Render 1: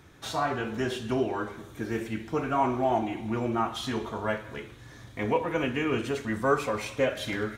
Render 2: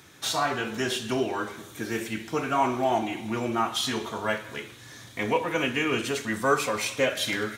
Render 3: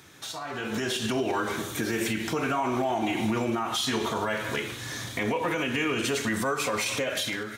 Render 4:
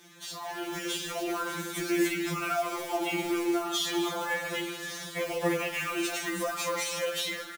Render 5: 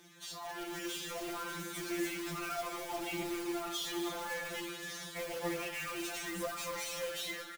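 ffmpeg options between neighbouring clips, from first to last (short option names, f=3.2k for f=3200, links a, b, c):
-af "highpass=110,highshelf=f=2.2k:g=11.5"
-af "acompressor=threshold=-28dB:ratio=6,alimiter=level_in=4.5dB:limit=-24dB:level=0:latency=1:release=103,volume=-4.5dB,dynaudnorm=f=480:g=3:m=10dB"
-af "acrusher=bits=3:mode=log:mix=0:aa=0.000001,aecho=1:1:207:0.168,afftfilt=real='re*2.83*eq(mod(b,8),0)':imag='im*2.83*eq(mod(b,8),0)':win_size=2048:overlap=0.75"
-filter_complex "[0:a]asplit=2[a][b];[b]aeval=exprs='(mod(29.9*val(0)+1,2)-1)/29.9':c=same,volume=-5dB[c];[a][c]amix=inputs=2:normalize=0,flanger=delay=0:depth=5.5:regen=78:speed=0.31:shape=triangular,volume=-4.5dB"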